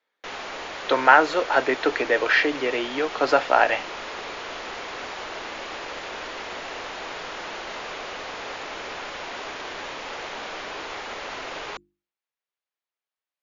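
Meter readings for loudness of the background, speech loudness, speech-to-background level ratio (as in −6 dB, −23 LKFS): −33.5 LKFS, −21.0 LKFS, 12.5 dB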